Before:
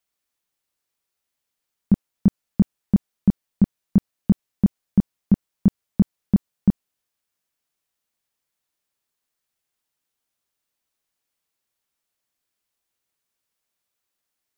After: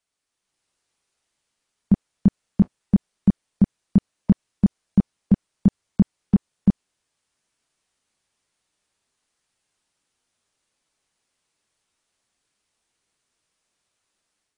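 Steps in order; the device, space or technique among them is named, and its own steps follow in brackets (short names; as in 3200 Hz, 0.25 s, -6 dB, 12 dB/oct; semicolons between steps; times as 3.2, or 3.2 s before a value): low-bitrate web radio (AGC gain up to 6 dB; limiter -7.5 dBFS, peak gain reduction 4.5 dB; AAC 32 kbps 22050 Hz)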